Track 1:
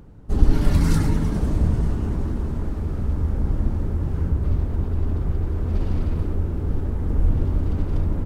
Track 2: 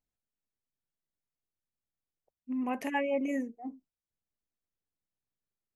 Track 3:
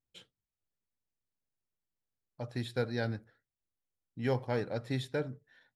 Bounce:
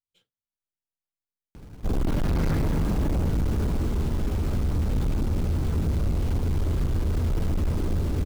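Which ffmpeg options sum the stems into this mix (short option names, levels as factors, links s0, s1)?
-filter_complex "[0:a]lowpass=3900,adelay=1550,volume=1.19[s0];[1:a]adelay=100,volume=0.211[s1];[2:a]aeval=exprs='if(lt(val(0),0),0.708*val(0),val(0))':c=same,volume=0.251[s2];[s0][s1][s2]amix=inputs=3:normalize=0,acrusher=bits=4:mode=log:mix=0:aa=0.000001,volume=11.2,asoftclip=hard,volume=0.0891,bandreject=f=1800:w=28"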